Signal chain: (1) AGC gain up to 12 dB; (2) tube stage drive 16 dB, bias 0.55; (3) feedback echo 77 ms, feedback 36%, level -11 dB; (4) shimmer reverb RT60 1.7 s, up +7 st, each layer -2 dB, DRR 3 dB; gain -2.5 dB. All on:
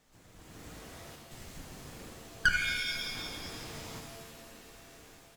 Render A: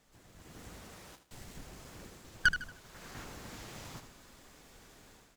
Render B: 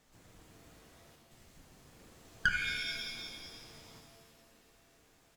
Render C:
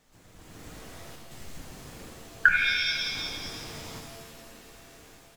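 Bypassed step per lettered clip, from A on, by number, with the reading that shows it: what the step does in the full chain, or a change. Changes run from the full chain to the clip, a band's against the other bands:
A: 4, 4 kHz band -4.5 dB; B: 1, loudness change -2.0 LU; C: 2, crest factor change +5.5 dB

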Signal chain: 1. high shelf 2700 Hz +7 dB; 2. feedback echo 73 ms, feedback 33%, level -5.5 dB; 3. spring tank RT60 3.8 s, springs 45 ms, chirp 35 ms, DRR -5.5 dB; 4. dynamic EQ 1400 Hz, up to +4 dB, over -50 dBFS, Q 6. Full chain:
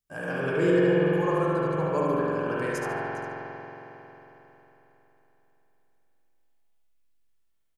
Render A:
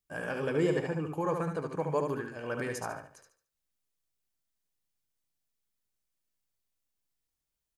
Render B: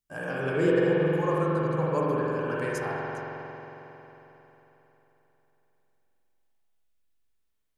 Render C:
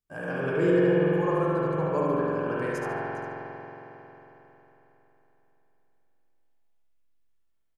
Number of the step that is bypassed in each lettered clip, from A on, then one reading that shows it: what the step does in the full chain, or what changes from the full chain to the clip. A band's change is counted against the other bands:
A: 3, momentary loudness spread change -9 LU; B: 2, 125 Hz band +2.0 dB; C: 1, 2 kHz band -2.0 dB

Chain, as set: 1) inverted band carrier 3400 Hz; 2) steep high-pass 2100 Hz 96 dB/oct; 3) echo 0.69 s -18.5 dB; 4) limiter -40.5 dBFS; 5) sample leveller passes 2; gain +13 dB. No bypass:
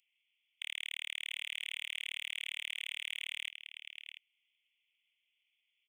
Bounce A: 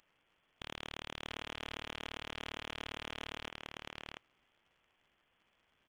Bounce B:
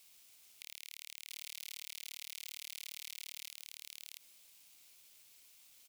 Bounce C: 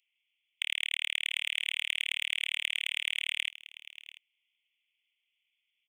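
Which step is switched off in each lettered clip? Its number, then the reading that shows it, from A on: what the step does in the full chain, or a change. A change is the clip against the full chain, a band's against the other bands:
2, 1 kHz band +25.5 dB; 1, 8 kHz band +14.0 dB; 4, mean gain reduction 4.5 dB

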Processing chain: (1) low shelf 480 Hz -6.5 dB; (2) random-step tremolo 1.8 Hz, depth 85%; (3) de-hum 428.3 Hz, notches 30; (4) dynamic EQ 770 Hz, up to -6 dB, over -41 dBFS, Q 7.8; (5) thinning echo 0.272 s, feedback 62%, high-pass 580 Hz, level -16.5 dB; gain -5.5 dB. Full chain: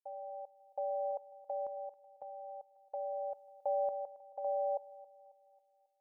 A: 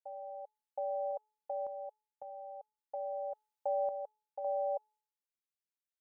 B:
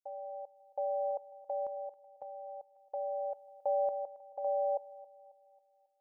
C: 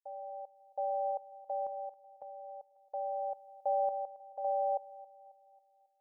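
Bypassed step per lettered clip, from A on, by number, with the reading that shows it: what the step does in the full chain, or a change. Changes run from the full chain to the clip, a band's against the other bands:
5, echo-to-direct -15.5 dB to none; 1, loudness change +2.5 LU; 4, momentary loudness spread change +2 LU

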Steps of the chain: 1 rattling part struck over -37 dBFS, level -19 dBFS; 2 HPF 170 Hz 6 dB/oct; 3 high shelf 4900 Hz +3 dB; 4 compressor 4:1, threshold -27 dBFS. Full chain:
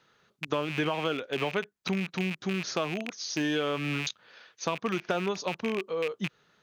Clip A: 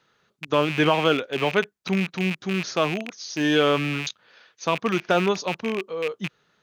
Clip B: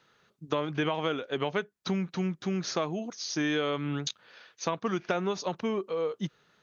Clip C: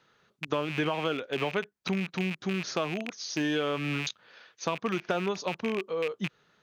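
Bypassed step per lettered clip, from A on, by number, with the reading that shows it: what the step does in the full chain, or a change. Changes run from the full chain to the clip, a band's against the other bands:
4, mean gain reduction 5.0 dB; 1, 2 kHz band -3.5 dB; 3, 8 kHz band -2.0 dB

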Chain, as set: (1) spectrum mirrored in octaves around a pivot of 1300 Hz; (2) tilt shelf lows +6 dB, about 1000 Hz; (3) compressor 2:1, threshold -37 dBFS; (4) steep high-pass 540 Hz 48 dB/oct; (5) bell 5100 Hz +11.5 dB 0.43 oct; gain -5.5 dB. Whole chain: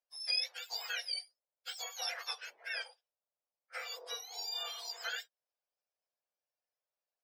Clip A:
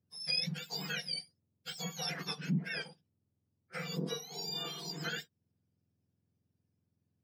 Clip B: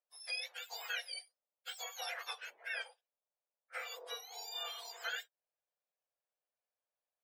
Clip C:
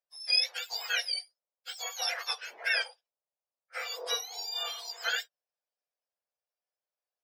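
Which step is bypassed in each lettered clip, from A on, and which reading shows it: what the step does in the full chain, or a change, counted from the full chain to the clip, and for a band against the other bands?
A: 4, 500 Hz band +7.0 dB; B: 5, 4 kHz band -5.5 dB; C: 3, mean gain reduction 6.5 dB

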